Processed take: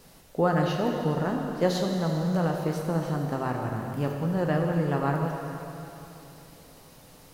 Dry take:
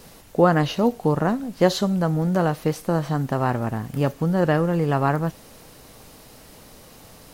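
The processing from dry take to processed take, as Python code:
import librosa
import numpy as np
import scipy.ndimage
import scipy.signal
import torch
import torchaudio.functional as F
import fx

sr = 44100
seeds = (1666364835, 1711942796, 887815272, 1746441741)

y = fx.rev_plate(x, sr, seeds[0], rt60_s=3.2, hf_ratio=0.95, predelay_ms=0, drr_db=1.5)
y = F.gain(torch.from_numpy(y), -8.0).numpy()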